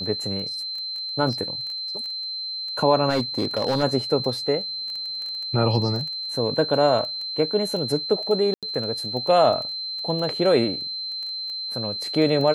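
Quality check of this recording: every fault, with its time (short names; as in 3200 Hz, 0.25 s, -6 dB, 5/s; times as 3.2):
crackle 10/s -29 dBFS
tone 4100 Hz -28 dBFS
3.09–3.84 clipped -17 dBFS
8.54–8.63 gap 87 ms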